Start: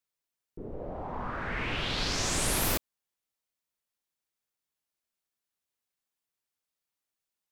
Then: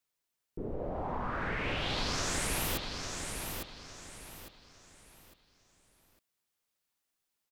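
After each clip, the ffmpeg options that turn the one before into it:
-filter_complex "[0:a]acompressor=threshold=0.02:ratio=6,asplit=2[s0][s1];[s1]aecho=0:1:854|1708|2562|3416:0.531|0.175|0.0578|0.0191[s2];[s0][s2]amix=inputs=2:normalize=0,volume=1.41"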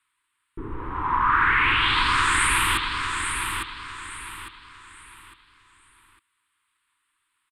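-af "firequalizer=gain_entry='entry(110,0);entry(180,-11);entry(320,1);entry(630,-27);entry(980,13);entry(3500,6);entry(5900,-18);entry(8600,8);entry(16000,-24)':delay=0.05:min_phase=1,volume=2.24"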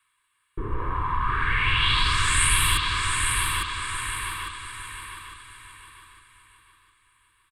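-filter_complex "[0:a]aecho=1:1:1.8:0.51,acrossover=split=240|3000[s0][s1][s2];[s1]acompressor=threshold=0.0282:ratio=4[s3];[s0][s3][s2]amix=inputs=3:normalize=0,asplit=2[s4][s5];[s5]aecho=0:1:708|1416|2124|2832:0.355|0.131|0.0486|0.018[s6];[s4][s6]amix=inputs=2:normalize=0,volume=1.41"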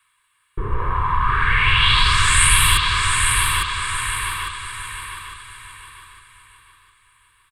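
-af "equalizer=f=290:t=o:w=0.38:g=-13.5,volume=2.11"

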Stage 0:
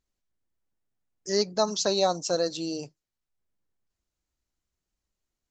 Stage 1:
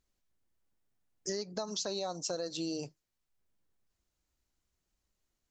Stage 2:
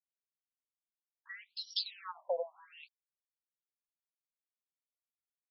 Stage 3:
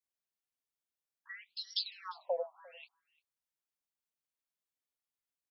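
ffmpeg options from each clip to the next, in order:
-af "alimiter=limit=0.0841:level=0:latency=1:release=263,acompressor=threshold=0.0178:ratio=6,volume=1.26"
-af "aeval=exprs='sgn(val(0))*max(abs(val(0))-0.00251,0)':c=same,afftfilt=real='re*between(b*sr/1024,700*pow(4100/700,0.5+0.5*sin(2*PI*0.74*pts/sr))/1.41,700*pow(4100/700,0.5+0.5*sin(2*PI*0.74*pts/sr))*1.41)':imag='im*between(b*sr/1024,700*pow(4100/700,0.5+0.5*sin(2*PI*0.74*pts/sr))/1.41,700*pow(4100/700,0.5+0.5*sin(2*PI*0.74*pts/sr))*1.41)':win_size=1024:overlap=0.75,volume=2"
-af "aecho=1:1:349:0.0668"

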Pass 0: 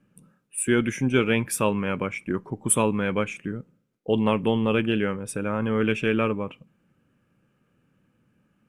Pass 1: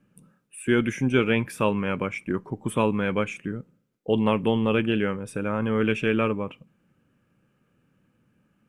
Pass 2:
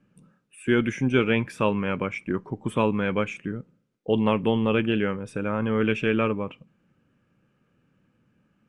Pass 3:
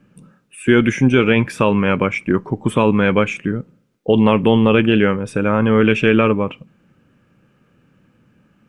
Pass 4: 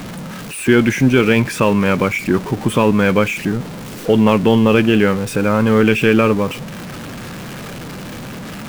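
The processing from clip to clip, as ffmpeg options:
-filter_complex "[0:a]acrossover=split=3800[s0][s1];[s1]acompressor=threshold=0.01:ratio=4:attack=1:release=60[s2];[s0][s2]amix=inputs=2:normalize=0"
-af "lowpass=6700"
-af "alimiter=level_in=3.76:limit=0.891:release=50:level=0:latency=1,volume=0.891"
-af "aeval=exprs='val(0)+0.5*0.0631*sgn(val(0))':c=same"

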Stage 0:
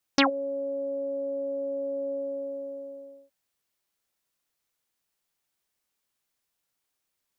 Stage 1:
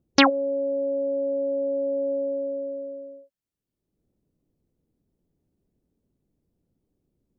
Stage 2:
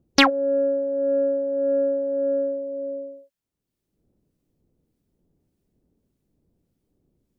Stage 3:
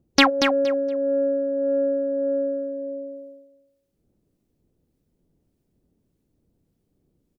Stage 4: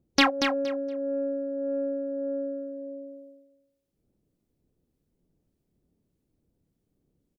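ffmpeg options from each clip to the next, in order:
-filter_complex "[0:a]afftdn=nr=19:nf=-43,acrossover=split=370[s0][s1];[s0]acompressor=mode=upward:threshold=0.00316:ratio=2.5[s2];[s2][s1]amix=inputs=2:normalize=0,volume=1.88"
-filter_complex "[0:a]acrossover=split=1200[s0][s1];[s0]aeval=exprs='val(0)*(1-0.5/2+0.5/2*cos(2*PI*1.7*n/s))':c=same[s2];[s1]aeval=exprs='val(0)*(1-0.5/2-0.5/2*cos(2*PI*1.7*n/s))':c=same[s3];[s2][s3]amix=inputs=2:normalize=0,asplit=2[s4][s5];[s5]asoftclip=type=tanh:threshold=0.0841,volume=0.596[s6];[s4][s6]amix=inputs=2:normalize=0,volume=1.26"
-af "aecho=1:1:234|468|702:0.473|0.0899|0.0171"
-filter_complex "[0:a]asplit=2[s0][s1];[s1]adelay=28,volume=0.299[s2];[s0][s2]amix=inputs=2:normalize=0,volume=0.562"

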